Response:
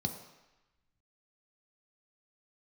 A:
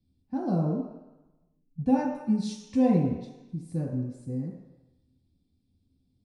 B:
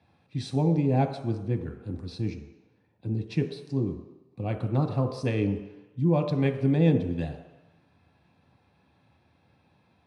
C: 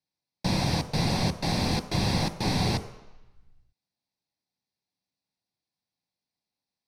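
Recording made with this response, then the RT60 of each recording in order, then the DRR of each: B; 1.0, 1.0, 1.0 seconds; −4.5, 4.0, 9.0 decibels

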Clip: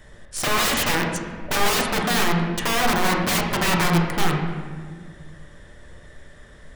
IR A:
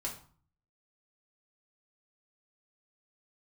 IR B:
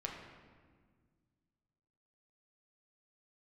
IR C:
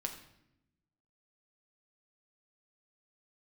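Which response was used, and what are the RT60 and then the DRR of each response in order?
B; 0.45, 1.7, 0.80 seconds; −3.0, −1.0, 3.0 decibels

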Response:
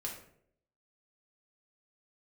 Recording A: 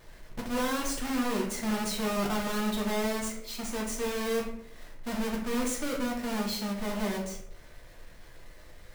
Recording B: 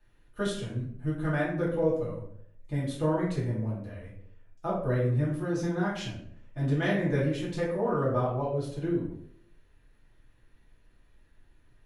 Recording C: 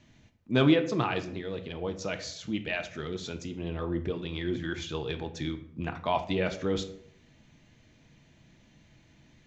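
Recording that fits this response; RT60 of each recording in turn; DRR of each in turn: A; 0.65, 0.65, 0.65 seconds; −2.0, −8.0, 7.5 decibels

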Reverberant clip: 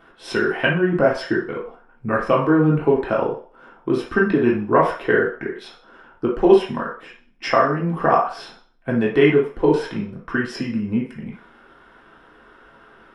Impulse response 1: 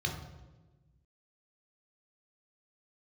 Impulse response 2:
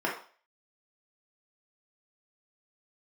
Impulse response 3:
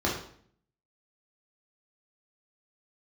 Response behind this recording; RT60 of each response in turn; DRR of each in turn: 2; 1.2, 0.40, 0.55 seconds; 0.5, −4.0, −4.5 decibels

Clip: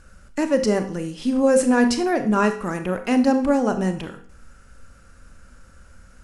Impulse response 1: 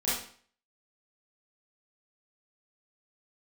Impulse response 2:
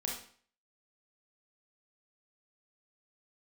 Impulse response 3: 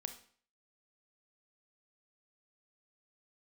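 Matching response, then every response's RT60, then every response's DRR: 3; 0.50, 0.50, 0.50 seconds; −10.5, −1.5, 7.5 decibels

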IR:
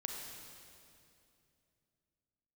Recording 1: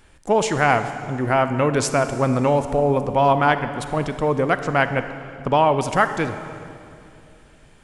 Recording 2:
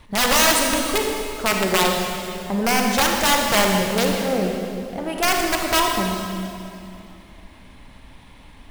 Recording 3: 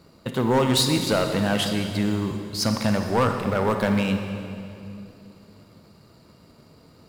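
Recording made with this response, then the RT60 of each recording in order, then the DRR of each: 2; 2.7, 2.7, 2.7 seconds; 9.5, 1.0, 5.0 decibels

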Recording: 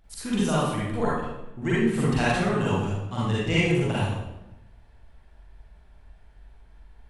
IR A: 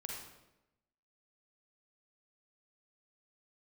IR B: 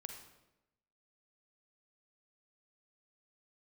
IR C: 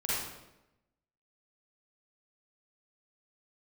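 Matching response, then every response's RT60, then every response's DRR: C; 0.95, 0.95, 0.95 seconds; −1.5, 4.0, −9.0 decibels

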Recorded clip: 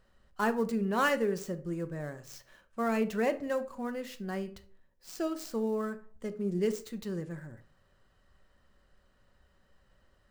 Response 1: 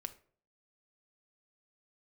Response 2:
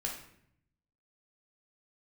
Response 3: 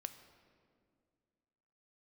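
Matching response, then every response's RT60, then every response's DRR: 1; 0.50, 0.70, 2.1 seconds; 8.5, −1.0, 9.0 decibels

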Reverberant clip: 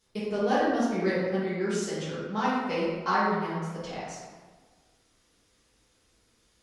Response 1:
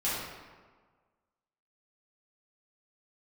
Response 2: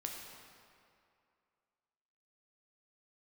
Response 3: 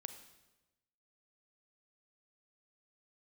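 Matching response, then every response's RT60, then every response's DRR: 1; 1.5, 2.4, 1.1 seconds; −10.5, 0.0, 8.5 decibels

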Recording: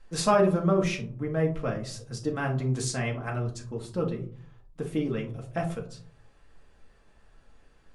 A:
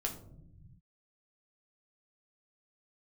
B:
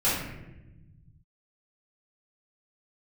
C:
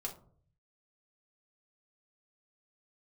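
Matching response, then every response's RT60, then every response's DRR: C; 0.75 s, 1.0 s, non-exponential decay; 0.0, −11.5, −1.0 decibels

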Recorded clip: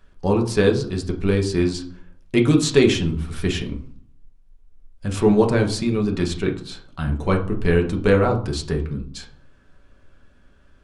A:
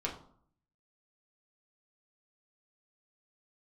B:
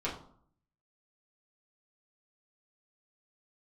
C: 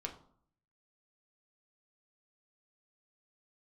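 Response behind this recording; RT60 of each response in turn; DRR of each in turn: C; 0.60, 0.60, 0.60 seconds; −3.0, −7.5, 1.5 decibels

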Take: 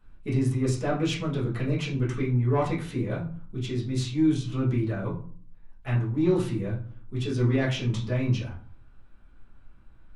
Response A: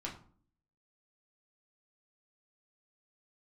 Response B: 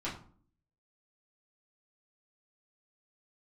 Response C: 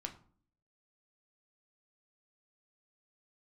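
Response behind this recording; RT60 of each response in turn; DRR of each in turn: B; 0.50, 0.50, 0.50 seconds; −3.0, −8.5, 3.5 decibels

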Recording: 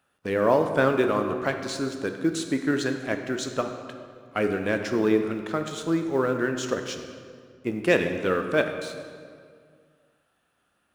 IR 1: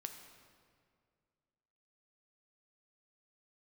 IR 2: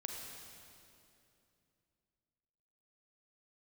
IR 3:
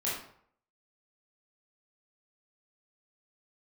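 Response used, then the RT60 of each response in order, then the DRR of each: 1; 2.1, 2.7, 0.60 seconds; 5.0, 1.0, −8.0 decibels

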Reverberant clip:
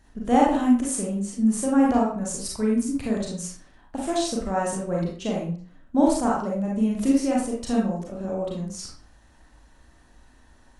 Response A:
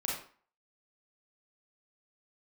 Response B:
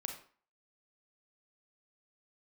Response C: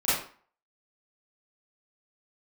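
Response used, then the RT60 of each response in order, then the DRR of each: A; 0.45, 0.45, 0.45 seconds; −4.0, 3.5, −13.5 decibels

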